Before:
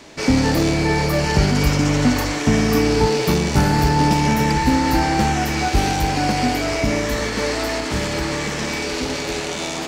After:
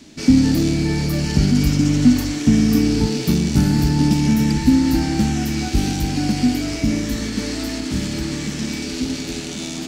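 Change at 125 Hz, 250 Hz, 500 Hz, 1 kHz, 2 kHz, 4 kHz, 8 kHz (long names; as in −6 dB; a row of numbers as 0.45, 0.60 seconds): +0.5, +3.5, −7.5, −12.0, −7.5, −2.5, −1.5 decibels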